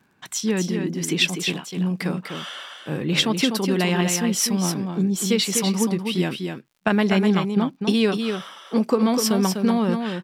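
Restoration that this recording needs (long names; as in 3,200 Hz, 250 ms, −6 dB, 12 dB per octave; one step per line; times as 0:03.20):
click removal
echo removal 248 ms −6 dB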